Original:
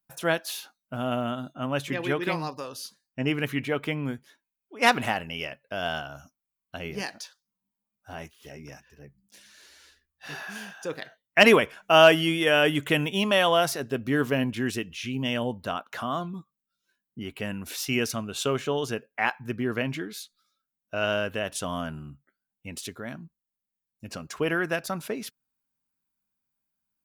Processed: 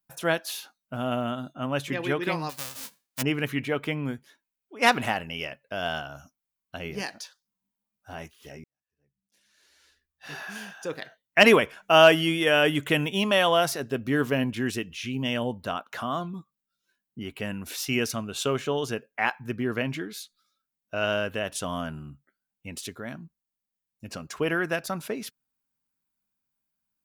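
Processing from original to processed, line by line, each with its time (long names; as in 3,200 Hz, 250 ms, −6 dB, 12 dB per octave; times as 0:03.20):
0:02.49–0:03.21: spectral envelope flattened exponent 0.1
0:08.64–0:10.43: fade in quadratic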